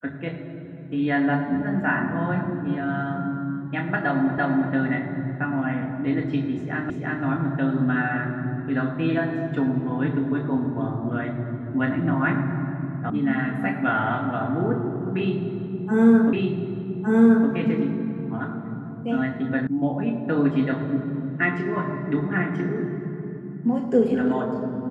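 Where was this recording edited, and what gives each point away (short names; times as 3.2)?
4.38 repeat of the last 0.34 s
6.9 repeat of the last 0.34 s
13.1 sound cut off
16.33 repeat of the last 1.16 s
19.67 sound cut off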